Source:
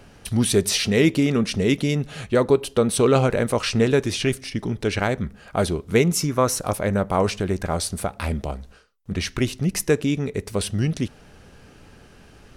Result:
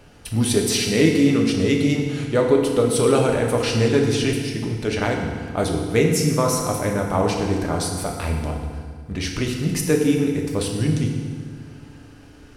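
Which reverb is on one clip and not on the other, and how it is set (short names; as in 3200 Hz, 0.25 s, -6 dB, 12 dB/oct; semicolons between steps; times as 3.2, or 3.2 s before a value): FDN reverb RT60 1.8 s, low-frequency decay 1.3×, high-frequency decay 0.85×, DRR 0.5 dB; gain -2 dB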